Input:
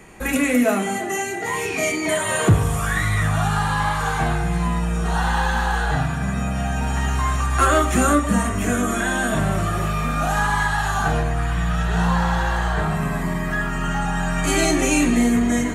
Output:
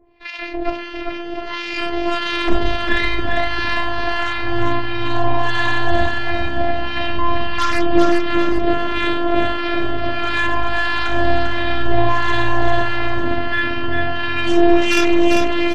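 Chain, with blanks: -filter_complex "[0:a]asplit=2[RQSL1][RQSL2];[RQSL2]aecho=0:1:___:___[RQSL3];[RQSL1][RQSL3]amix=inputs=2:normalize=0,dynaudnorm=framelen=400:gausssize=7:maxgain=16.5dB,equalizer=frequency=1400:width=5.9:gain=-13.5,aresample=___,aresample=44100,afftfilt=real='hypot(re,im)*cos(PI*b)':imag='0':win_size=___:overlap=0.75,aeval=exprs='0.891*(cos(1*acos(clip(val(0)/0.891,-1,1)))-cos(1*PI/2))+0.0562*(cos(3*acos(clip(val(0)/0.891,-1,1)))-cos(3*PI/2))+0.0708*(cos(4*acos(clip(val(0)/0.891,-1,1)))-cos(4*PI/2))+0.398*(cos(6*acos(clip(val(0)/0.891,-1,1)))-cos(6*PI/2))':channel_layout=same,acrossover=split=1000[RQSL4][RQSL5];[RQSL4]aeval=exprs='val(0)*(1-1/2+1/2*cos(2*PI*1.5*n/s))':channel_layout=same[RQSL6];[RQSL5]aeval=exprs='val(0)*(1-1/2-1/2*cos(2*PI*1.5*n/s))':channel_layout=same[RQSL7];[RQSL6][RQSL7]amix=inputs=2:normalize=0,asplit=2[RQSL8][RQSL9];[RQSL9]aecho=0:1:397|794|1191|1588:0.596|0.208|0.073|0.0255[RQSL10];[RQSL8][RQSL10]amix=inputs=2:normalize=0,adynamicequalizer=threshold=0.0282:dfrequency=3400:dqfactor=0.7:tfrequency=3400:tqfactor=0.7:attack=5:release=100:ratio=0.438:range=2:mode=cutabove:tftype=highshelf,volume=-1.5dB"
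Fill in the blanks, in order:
707, 0.224, 11025, 512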